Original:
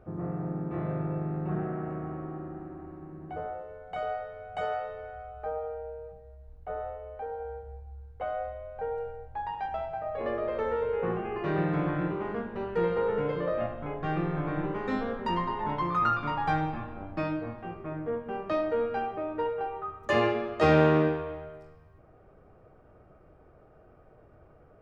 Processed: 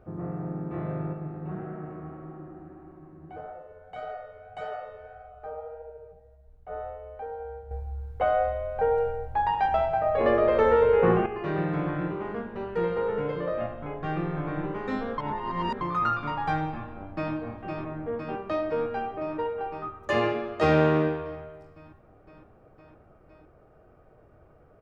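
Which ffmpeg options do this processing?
-filter_complex "[0:a]asplit=3[a][b][c];[a]afade=t=out:st=1.12:d=0.02[d];[b]flanger=delay=4.2:depth=8.7:regen=50:speed=1.7:shape=triangular,afade=t=in:st=1.12:d=0.02,afade=t=out:st=6.71:d=0.02[e];[c]afade=t=in:st=6.71:d=0.02[f];[d][e][f]amix=inputs=3:normalize=0,asplit=2[g][h];[h]afade=t=in:st=16.75:d=0.01,afade=t=out:st=17.33:d=0.01,aecho=0:1:510|1020|1530|2040|2550|3060|3570|4080|4590|5100|5610|6120:0.562341|0.449873|0.359898|0.287919|0.230335|0.184268|0.147414|0.117932|0.0943452|0.0754762|0.0603809|0.0483048[i];[g][i]amix=inputs=2:normalize=0,asplit=5[j][k][l][m][n];[j]atrim=end=7.712[o];[k]atrim=start=7.708:end=11.262,asetpts=PTS-STARTPTS,volume=9.5dB[p];[l]atrim=start=11.258:end=15.182[q];[m]atrim=start=15.178:end=15.812,asetpts=PTS-STARTPTS,areverse[r];[n]atrim=start=15.808[s];[o][p]acrossfade=d=0.004:c1=hsin:c2=hsin[t];[t][q]acrossfade=d=0.004:c1=hsin:c2=hsin[u];[u][r]acrossfade=d=0.004:c1=hsin:c2=hsin[v];[v][s]acrossfade=d=0.004:c1=hsin:c2=hsin"

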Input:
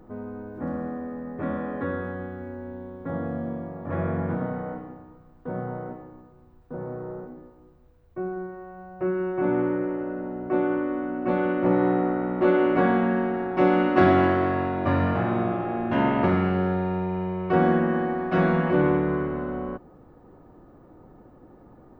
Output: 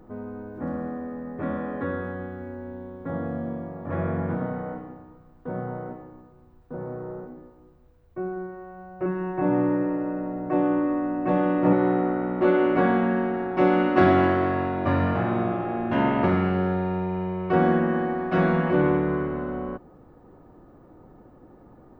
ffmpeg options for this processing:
-filter_complex "[0:a]asettb=1/sr,asplit=3[a][b][c];[a]atrim=end=9.054[d];[b]atrim=start=9.05:end=11.73,asetpts=PTS-STARTPTS,afade=t=in:d=0.004:c=qsin,afade=t=out:st=2.676:d=0.004:c=qsin,aecho=1:1:6.5:0.85,atrim=end_sample=118188[e];[c]atrim=start=11.726[f];[d][e]acrossfade=d=0.004:c1=hsin:c2=qsin[g];[g][f]acrossfade=d=0.004:c1=qsin:c2=hsin"

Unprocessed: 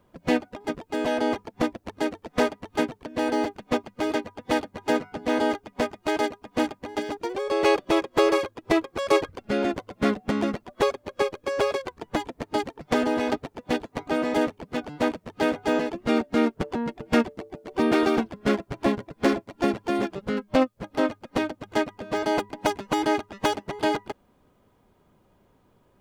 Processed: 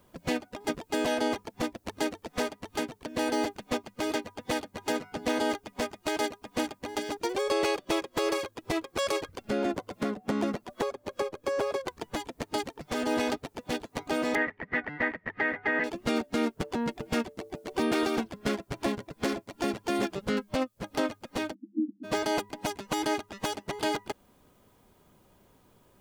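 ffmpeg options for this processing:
-filter_complex "[0:a]asettb=1/sr,asplit=3[a][b][c];[a]atrim=end=9.504[d];[b]atrim=start=9.5:end=11.88,asetpts=PTS-STARTPTS,afade=t=in:d=0.004:c=qsin,afade=t=out:st=2.376:d=0.004:c=qsin,acrossover=split=120|1500[e][f][g];[e]acompressor=threshold=-51dB:ratio=4[h];[f]acompressor=threshold=-23dB:ratio=4[i];[g]acompressor=threshold=-47dB:ratio=4[j];[h][i][j]amix=inputs=3:normalize=0[k];[c]atrim=start=11.876[l];[d][k]acrossfade=d=0.004:c1=hsin:c2=qsin[m];[m][l]acrossfade=d=0.004:c1=qsin:c2=hsin,asettb=1/sr,asplit=3[n][o][p];[n]atrim=end=14.354[q];[o]atrim=start=14.35:end=15.84,asetpts=PTS-STARTPTS,afade=t=in:d=0.004:c=qsin,afade=t=out:st=1.486:d=0.004:c=qsin,lowpass=f=1.9k:t=q:w=14[r];[p]atrim=start=15.836[s];[q][r]acrossfade=d=0.004:c1=hsin:c2=qsin[t];[t][s]acrossfade=d=0.004:c1=qsin:c2=hsin,asplit=3[u][v][w];[u]afade=t=out:st=21.53:d=0.02[x];[v]asuperpass=centerf=260:order=20:qfactor=1.8,afade=t=in:st=21.53:d=0.02,afade=t=out:st=22.03:d=0.02[y];[w]afade=t=in:st=22.03:d=0.02[z];[x][y][z]amix=inputs=3:normalize=0,highshelf=f=3.8k:g=11,alimiter=limit=-17.5dB:level=0:latency=1:release=360"

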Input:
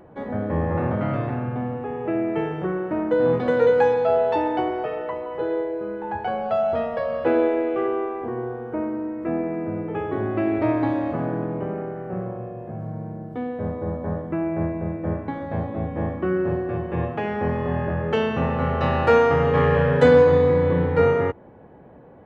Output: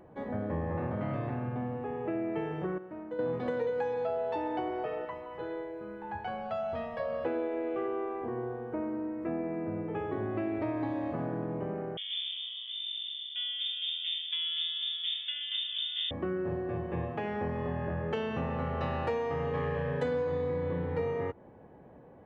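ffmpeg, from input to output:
-filter_complex "[0:a]asettb=1/sr,asplit=3[a][b][c];[a]atrim=end=5.054[d];[b]atrim=start=5.05:end=7,asetpts=PTS-STARTPTS,afade=t=in:d=0.004:c=qsin,afade=t=out:st=1.946:d=0.004:c=qsin,equalizer=f=450:w=0.83:g=-7.5[e];[c]atrim=start=6.996[f];[d][e]acrossfade=d=0.004:c1=hsin:c2=qsin[g];[g][f]acrossfade=d=0.004:c1=qsin:c2=hsin,asettb=1/sr,asplit=3[h][i][j];[h]atrim=end=11.974[k];[i]atrim=start=11.97:end=16.11,asetpts=PTS-STARTPTS,afade=t=in:d=0.004:c=qsin,afade=t=out:st=4.136:d=0.004:c=qsin,lowpass=f=3.1k:t=q:w=0.5098,lowpass=f=3.1k:t=q:w=0.6013,lowpass=f=3.1k:t=q:w=0.9,lowpass=f=3.1k:t=q:w=2.563,afreqshift=-3700[l];[j]atrim=start=16.106[m];[k][l]acrossfade=d=0.004:c1=hsin:c2=qsin[n];[n][m]acrossfade=d=0.004:c1=qsin:c2=hsin,asplit=3[o][p][q];[o]atrim=end=2.782[r];[p]atrim=start=2.778:end=3.192,asetpts=PTS-STARTPTS,volume=-11.5dB[s];[q]atrim=start=3.188[t];[r][s]acrossfade=d=0.004:c1=hsin:c2=hsin[u];[u][t]acrossfade=d=0.004:c1=hsin:c2=hsin,bandreject=f=1.4k:w=18,acompressor=threshold=-23dB:ratio=5,volume=-6.5dB"

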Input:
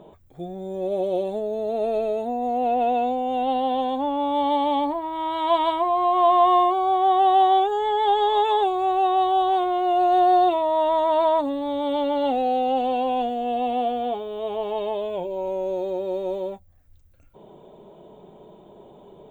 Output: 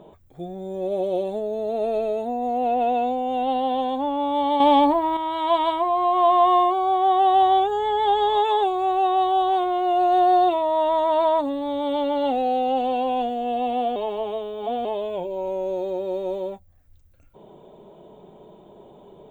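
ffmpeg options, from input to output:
-filter_complex "[0:a]asettb=1/sr,asplit=3[a][b][c];[a]atrim=end=4.604[d];[b]atrim=start=4.6:end=5.17,asetpts=PTS-STARTPTS,afade=t=in:d=0.004:c=qsin,afade=t=out:st=0.566:d=0.004:c=qsin,acontrast=79[e];[c]atrim=start=5.166[f];[d][e]acrossfade=d=0.004:c1=hsin:c2=qsin[g];[g][f]acrossfade=d=0.004:c1=qsin:c2=hsin,asettb=1/sr,asplit=3[h][i][j];[h]atrim=end=7.334[k];[i]atrim=start=7.33:end=8.38,asetpts=PTS-STARTPTS,afade=t=in:d=0.004:c=qsin,afade=t=out:st=1.046:d=0.004:c=qsin,aeval=exprs='val(0)+0.00282*(sin(2*PI*60*n/s)+sin(2*PI*2*60*n/s)/2+sin(2*PI*3*60*n/s)/3+sin(2*PI*4*60*n/s)/4+sin(2*PI*5*60*n/s)/5)':c=same[l];[j]atrim=start=8.376[m];[k][l]acrossfade=d=0.004:c1=hsin:c2=qsin[n];[n][m]acrossfade=d=0.004:c1=qsin:c2=hsin,asplit=3[o][p][q];[o]atrim=end=13.962[r];[p]atrim=start=13.958:end=14.852,asetpts=PTS-STARTPTS,areverse[s];[q]atrim=start=14.848[t];[r][s]acrossfade=d=0.004:c1=hsin:c2=hsin[u];[u][t]acrossfade=d=0.004:c1=hsin:c2=hsin"

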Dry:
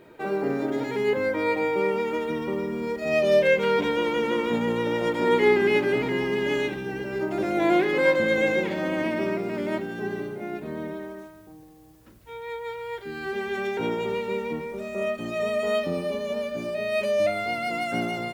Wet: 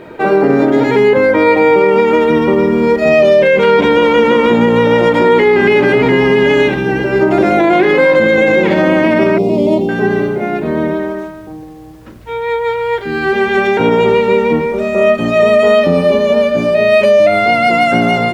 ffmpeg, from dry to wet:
-filter_complex "[0:a]asettb=1/sr,asplit=3[a][b][c];[a]atrim=end=9.384[d];[b]atrim=start=9.38:end=9.89,asetpts=PTS-STARTPTS,afade=t=in:d=0.004:c=qsin,afade=t=out:st=0.506:d=0.004:c=qsin,asuperstop=centerf=1600:order=4:qfactor=0.68[e];[c]atrim=start=9.886[f];[d][e]acrossfade=d=0.004:c1=hsin:c2=qsin[g];[g][f]acrossfade=d=0.004:c1=qsin:c2=hsin,lowpass=f=2.9k:p=1,bandreject=f=50:t=h:w=6,bandreject=f=100:t=h:w=6,bandreject=f=150:t=h:w=6,bandreject=f=200:t=h:w=6,bandreject=f=250:t=h:w=6,bandreject=f=300:t=h:w=6,bandreject=f=350:t=h:w=6,bandreject=f=400:t=h:w=6,alimiter=level_in=19.5dB:limit=-1dB:release=50:level=0:latency=1,volume=-1dB"

